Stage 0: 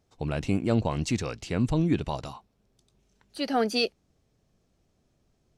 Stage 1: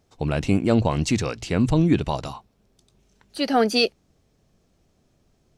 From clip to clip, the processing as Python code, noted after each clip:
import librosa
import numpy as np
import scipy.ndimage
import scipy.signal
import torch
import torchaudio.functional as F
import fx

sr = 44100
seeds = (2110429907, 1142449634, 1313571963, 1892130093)

y = fx.hum_notches(x, sr, base_hz=60, count=2)
y = y * 10.0 ** (6.0 / 20.0)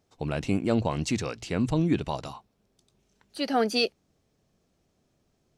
y = fx.low_shelf(x, sr, hz=71.0, db=-8.5)
y = y * 10.0 ** (-5.0 / 20.0)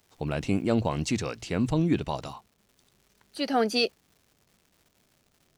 y = fx.dmg_crackle(x, sr, seeds[0], per_s=340.0, level_db=-51.0)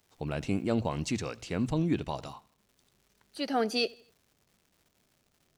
y = fx.echo_feedback(x, sr, ms=83, feedback_pct=43, wet_db=-23.5)
y = y * 10.0 ** (-4.0 / 20.0)